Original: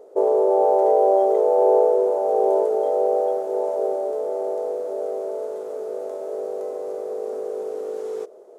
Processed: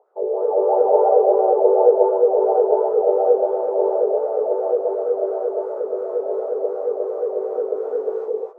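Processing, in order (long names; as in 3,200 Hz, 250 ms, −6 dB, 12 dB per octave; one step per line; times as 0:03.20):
automatic gain control gain up to 8 dB
LFO wah 2.8 Hz 380–1,400 Hz, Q 5.2
reverb whose tail is shaped and stops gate 290 ms rising, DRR −3 dB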